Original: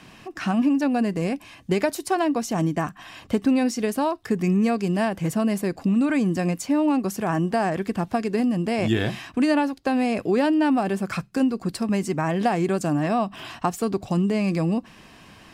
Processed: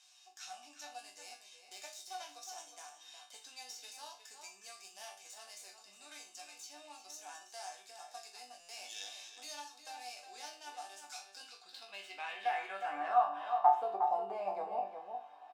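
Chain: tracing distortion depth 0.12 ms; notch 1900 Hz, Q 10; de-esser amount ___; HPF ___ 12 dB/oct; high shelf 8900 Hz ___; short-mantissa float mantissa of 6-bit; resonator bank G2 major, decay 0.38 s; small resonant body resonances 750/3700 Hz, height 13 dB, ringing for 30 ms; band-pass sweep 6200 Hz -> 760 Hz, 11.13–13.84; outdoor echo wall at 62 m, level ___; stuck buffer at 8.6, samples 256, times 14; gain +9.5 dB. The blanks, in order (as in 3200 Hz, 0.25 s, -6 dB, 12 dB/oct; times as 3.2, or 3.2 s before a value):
60%, 540 Hz, +8.5 dB, -7 dB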